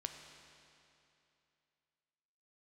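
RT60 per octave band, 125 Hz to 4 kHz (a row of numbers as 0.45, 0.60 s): 2.8, 2.8, 2.8, 2.8, 2.7, 2.6 s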